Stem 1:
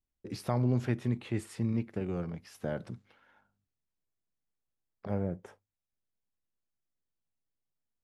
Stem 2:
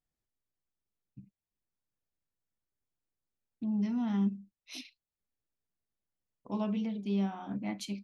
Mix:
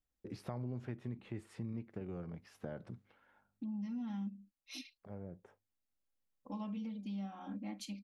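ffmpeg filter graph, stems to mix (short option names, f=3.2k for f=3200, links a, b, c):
-filter_complex "[0:a]highshelf=f=3.7k:g=-10.5,volume=-3.5dB[a];[1:a]aecho=1:1:3.7:0.97,volume=-6dB,asplit=2[b][c];[c]apad=whole_len=354382[d];[a][d]sidechaincompress=threshold=-48dB:ratio=8:attack=5.2:release=1480[e];[e][b]amix=inputs=2:normalize=0,acompressor=threshold=-42dB:ratio=2.5"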